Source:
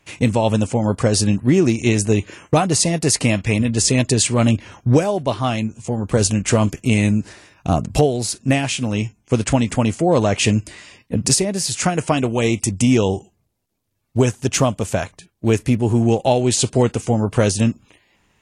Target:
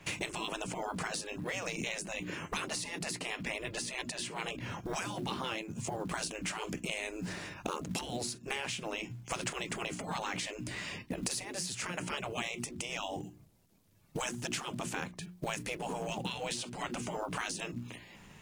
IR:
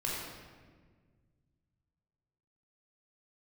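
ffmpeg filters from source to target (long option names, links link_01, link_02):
-filter_complex "[0:a]bandreject=frequency=60:width_type=h:width=6,bandreject=frequency=120:width_type=h:width=6,bandreject=frequency=180:width_type=h:width=6,bandreject=frequency=240:width_type=h:width=6,bandreject=frequency=300:width_type=h:width=6,bandreject=frequency=360:width_type=h:width=6,afftfilt=real='re*lt(hypot(re,im),0.251)':imag='im*lt(hypot(re,im),0.251)':win_size=1024:overlap=0.75,equalizer=frequency=170:width_type=o:width=0.61:gain=9,acrossover=split=130[link_01][link_02];[link_01]alimiter=level_in=17dB:limit=-24dB:level=0:latency=1:release=259,volume=-17dB[link_03];[link_03][link_02]amix=inputs=2:normalize=0,acompressor=threshold=-40dB:ratio=5,acrusher=bits=6:mode=log:mix=0:aa=0.000001,adynamicequalizer=threshold=0.00141:dfrequency=4500:dqfactor=0.7:tfrequency=4500:tqfactor=0.7:attack=5:release=100:ratio=0.375:range=3.5:mode=cutabove:tftype=highshelf,volume=5dB"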